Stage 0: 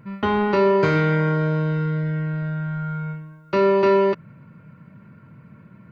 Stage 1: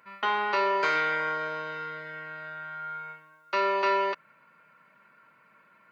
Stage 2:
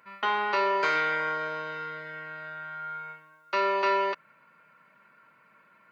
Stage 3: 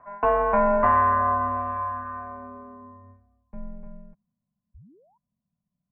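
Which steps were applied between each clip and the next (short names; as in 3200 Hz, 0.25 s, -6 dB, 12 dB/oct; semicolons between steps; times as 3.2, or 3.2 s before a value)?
HPF 900 Hz 12 dB/oct
nothing audible
painted sound rise, 4.74–5.18, 410–1400 Hz -26 dBFS; low-pass sweep 1400 Hz -> 120 Hz, 2.08–4.37; mistuned SSB -370 Hz 210–3200 Hz; gain +1.5 dB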